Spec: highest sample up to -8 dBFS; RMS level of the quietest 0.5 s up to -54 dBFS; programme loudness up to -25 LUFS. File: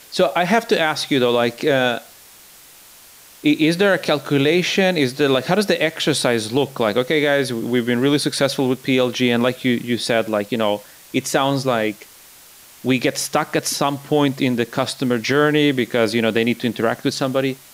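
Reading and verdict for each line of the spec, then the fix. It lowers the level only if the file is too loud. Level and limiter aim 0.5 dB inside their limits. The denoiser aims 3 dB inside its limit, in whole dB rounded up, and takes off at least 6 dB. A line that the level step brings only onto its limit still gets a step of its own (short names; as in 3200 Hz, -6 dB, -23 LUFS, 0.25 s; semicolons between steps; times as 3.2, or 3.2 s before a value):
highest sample -5.5 dBFS: fail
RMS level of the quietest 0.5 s -45 dBFS: fail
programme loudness -19.0 LUFS: fail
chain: denoiser 6 dB, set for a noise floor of -45 dBFS; gain -6.5 dB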